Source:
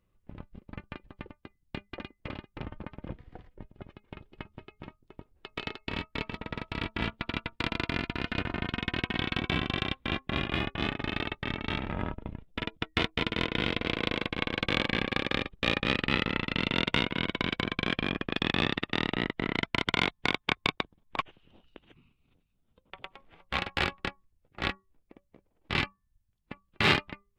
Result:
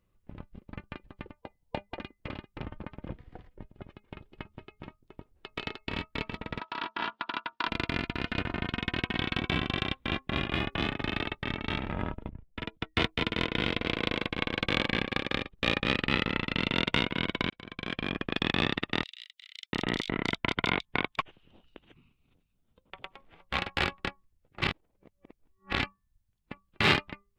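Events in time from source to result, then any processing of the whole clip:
1.37–1.96 spectral gain 460–1000 Hz +12 dB
6.6–7.68 speaker cabinet 400–5700 Hz, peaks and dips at 500 Hz -9 dB, 990 Hz +9 dB, 1500 Hz +6 dB, 2200 Hz -7 dB
10.72–11.26 three-band squash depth 70%
12.29–13.32 three-band expander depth 70%
15.02–15.58 upward expander, over -37 dBFS
17.5–18.24 fade in
19.03–21.19 bands offset in time highs, lows 0.7 s, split 3500 Hz
24.62–25.8 reverse

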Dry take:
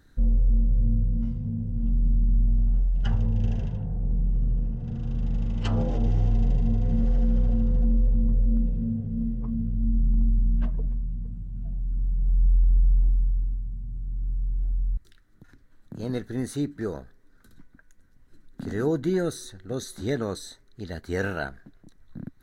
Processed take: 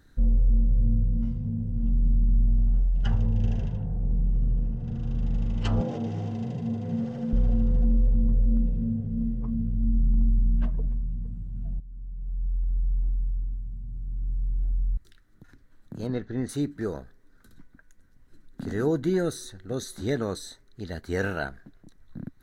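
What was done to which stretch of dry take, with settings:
5.81–7.33 HPF 120 Hz 24 dB/oct
11.8–14.57 fade in, from -15.5 dB
16.07–16.49 air absorption 170 m

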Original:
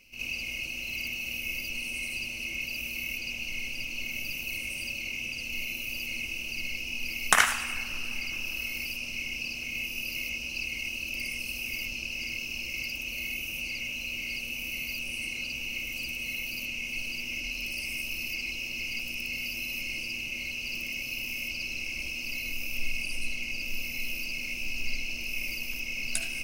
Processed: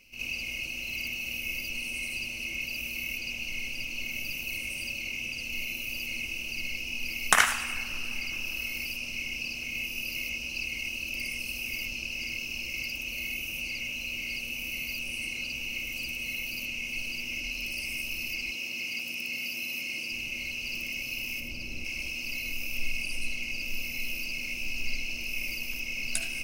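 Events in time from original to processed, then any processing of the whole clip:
18.51–20.12 HPF 160 Hz
21.4–21.85 tilt shelf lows +5.5 dB, about 690 Hz

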